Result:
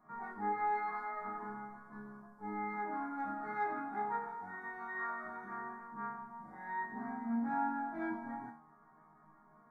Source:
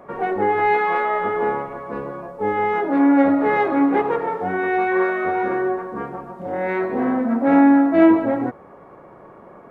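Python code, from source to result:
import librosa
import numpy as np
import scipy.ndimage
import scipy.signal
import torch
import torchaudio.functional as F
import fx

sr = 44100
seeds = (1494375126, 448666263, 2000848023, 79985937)

y = fx.fixed_phaser(x, sr, hz=1200.0, stages=4)
y = fx.resonator_bank(y, sr, root=51, chord='sus4', decay_s=0.5)
y = y * librosa.db_to_amplitude(2.5)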